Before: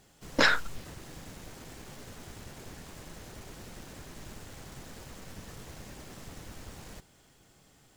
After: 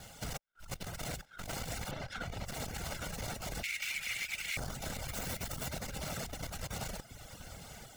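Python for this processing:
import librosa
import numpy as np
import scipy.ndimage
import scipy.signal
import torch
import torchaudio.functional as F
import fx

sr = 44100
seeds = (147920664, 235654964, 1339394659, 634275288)

y = fx.lower_of_two(x, sr, delay_ms=1.4)
y = fx.air_absorb(y, sr, metres=140.0, at=(1.91, 2.47))
y = fx.echo_feedback(y, sr, ms=838, feedback_pct=37, wet_db=-15.5)
y = fx.over_compress(y, sr, threshold_db=-48.0, ratio=-0.5)
y = fx.highpass_res(y, sr, hz=2300.0, q=6.9, at=(3.63, 4.57))
y = y + 10.0 ** (-17.0 / 20.0) * np.pad(y, (int(883 * sr / 1000.0), 0))[:len(y)]
y = fx.dereverb_blind(y, sr, rt60_s=0.86)
y = fx.high_shelf(y, sr, hz=12000.0, db=10.0, at=(5.08, 5.68))
y = fx.transformer_sat(y, sr, knee_hz=130.0)
y = y * 10.0 ** (7.0 / 20.0)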